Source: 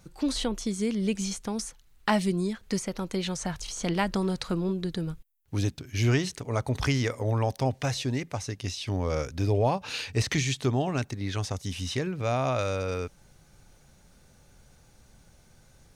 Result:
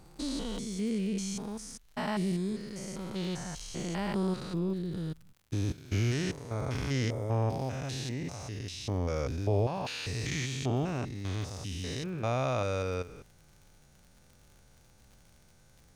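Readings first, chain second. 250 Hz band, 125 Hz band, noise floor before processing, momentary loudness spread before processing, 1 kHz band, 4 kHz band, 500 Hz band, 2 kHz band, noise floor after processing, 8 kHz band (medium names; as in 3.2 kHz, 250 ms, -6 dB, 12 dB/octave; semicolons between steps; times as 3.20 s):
-4.0 dB, -3.5 dB, -59 dBFS, 8 LU, -6.0 dB, -6.0 dB, -4.5 dB, -6.0 dB, -60 dBFS, -6.0 dB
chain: spectrogram pixelated in time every 200 ms; crackle 70 per s -45 dBFS; trim -2 dB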